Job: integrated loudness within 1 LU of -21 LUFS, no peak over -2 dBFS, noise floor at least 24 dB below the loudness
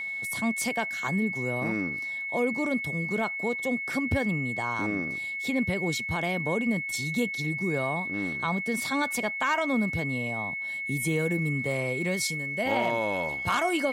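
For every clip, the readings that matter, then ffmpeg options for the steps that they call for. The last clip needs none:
steady tone 2200 Hz; tone level -31 dBFS; loudness -28.0 LUFS; peak -12.5 dBFS; loudness target -21.0 LUFS
-> -af "bandreject=f=2.2k:w=30"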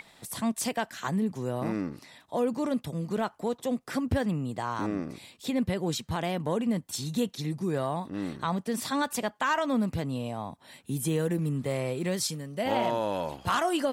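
steady tone none; loudness -30.5 LUFS; peak -12.0 dBFS; loudness target -21.0 LUFS
-> -af "volume=9.5dB"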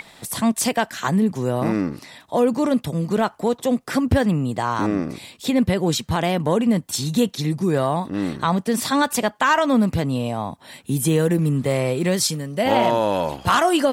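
loudness -21.0 LUFS; peak -2.5 dBFS; noise floor -51 dBFS

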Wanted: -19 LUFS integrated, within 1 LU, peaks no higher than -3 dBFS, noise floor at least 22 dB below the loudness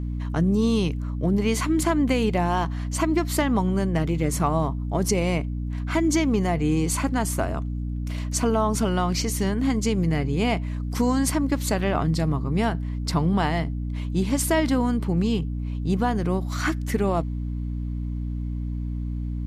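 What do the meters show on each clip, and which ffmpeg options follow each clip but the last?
hum 60 Hz; harmonics up to 300 Hz; hum level -26 dBFS; loudness -24.5 LUFS; peak -8.5 dBFS; loudness target -19.0 LUFS
-> -af "bandreject=f=60:t=h:w=4,bandreject=f=120:t=h:w=4,bandreject=f=180:t=h:w=4,bandreject=f=240:t=h:w=4,bandreject=f=300:t=h:w=4"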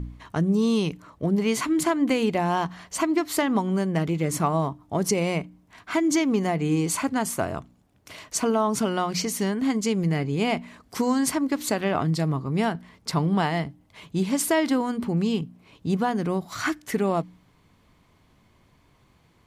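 hum none; loudness -25.0 LUFS; peak -10.0 dBFS; loudness target -19.0 LUFS
-> -af "volume=6dB"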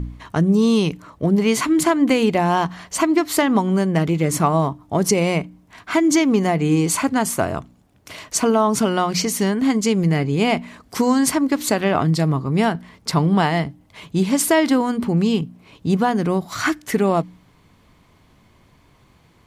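loudness -19.0 LUFS; peak -4.0 dBFS; noise floor -55 dBFS

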